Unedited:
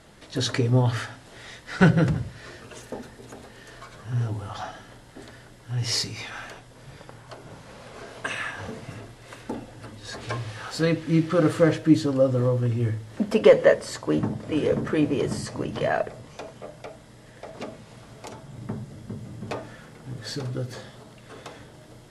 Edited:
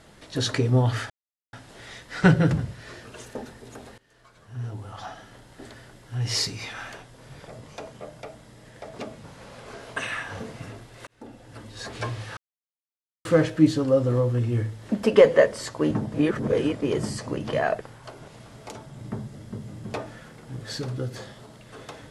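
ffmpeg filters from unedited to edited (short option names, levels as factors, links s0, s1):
-filter_complex "[0:a]asplit=12[s0][s1][s2][s3][s4][s5][s6][s7][s8][s9][s10][s11];[s0]atrim=end=1.1,asetpts=PTS-STARTPTS,afade=t=out:st=1.096:d=0.004:c=hsin,apad=pad_dur=0.43[s12];[s1]atrim=start=1.1:end=3.55,asetpts=PTS-STARTPTS,afade=t=in:d=0.004:c=hsin,afade=t=out:st=2.446:d=0.004:c=hsin:silence=0.0891251[s13];[s2]atrim=start=3.55:end=7.052,asetpts=PTS-STARTPTS,afade=t=in:d=1.65:silence=0.0891251[s14];[s3]atrim=start=16.088:end=17.852[s15];[s4]atrim=start=7.518:end=9.35,asetpts=PTS-STARTPTS,afade=t=out:st=1.828:d=0.004:c=hsin[s16];[s5]atrim=start=9.35:end=10.65,asetpts=PTS-STARTPTS,afade=t=in:d=0.6,afade=t=out:st=1.296:d=0.004:c=hsin[s17];[s6]atrim=start=10.65:end=11.53,asetpts=PTS-STARTPTS,volume=0[s18];[s7]atrim=start=11.53:end=14.422,asetpts=PTS-STARTPTS,afade=t=in:d=0.004:c=hsin[s19];[s8]atrim=start=14.418:end=15.102,asetpts=PTS-STARTPTS,areverse[s20];[s9]atrim=start=15.098:end=16.092[s21];[s10]atrim=start=7.048:end=7.522[s22];[s11]atrim=start=17.848[s23];[s12][s13][s14]concat=n=3:v=0:a=1[s24];[s24][s15]acrossfade=d=0.004:c1=hsin:c2=hsin[s25];[s16][s17][s18][s19]concat=n=4:v=0:a=1[s26];[s25][s26]acrossfade=d=0.004:c1=hsin:c2=hsin[s27];[s27][s20]acrossfade=d=0.004:c1=hsin:c2=hsin[s28];[s28][s21]acrossfade=d=0.004:c1=hsin:c2=hsin[s29];[s29][s22]acrossfade=d=0.004:c1=hsin:c2=hsin[s30];[s30][s23]acrossfade=d=0.004:c1=hsin:c2=hsin"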